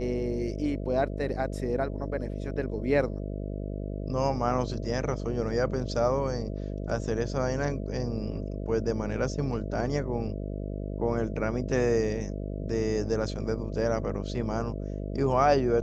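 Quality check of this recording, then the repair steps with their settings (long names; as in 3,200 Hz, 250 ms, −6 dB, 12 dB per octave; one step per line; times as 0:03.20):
mains buzz 50 Hz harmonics 13 −34 dBFS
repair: hum removal 50 Hz, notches 13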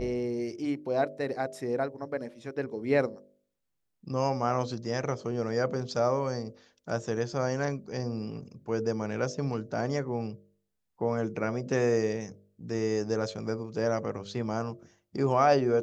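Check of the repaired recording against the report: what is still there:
none of them is left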